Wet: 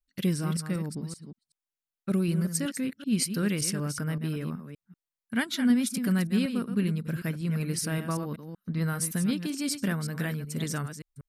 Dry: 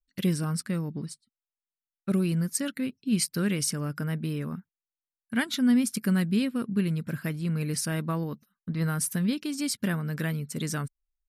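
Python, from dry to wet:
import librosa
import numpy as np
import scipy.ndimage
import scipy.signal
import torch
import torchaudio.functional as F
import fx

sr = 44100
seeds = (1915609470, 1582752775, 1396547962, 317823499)

y = fx.reverse_delay(x, sr, ms=190, wet_db=-9.0)
y = F.gain(torch.from_numpy(y), -1.0).numpy()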